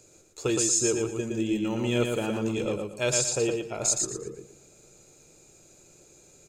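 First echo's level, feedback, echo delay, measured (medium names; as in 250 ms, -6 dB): -4.0 dB, 28%, 116 ms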